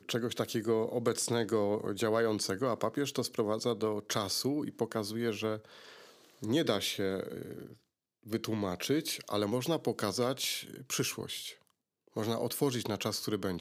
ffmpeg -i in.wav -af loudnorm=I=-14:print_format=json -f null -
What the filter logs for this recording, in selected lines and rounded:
"input_i" : "-33.6",
"input_tp" : "-14.8",
"input_lra" : "3.4",
"input_thresh" : "-44.0",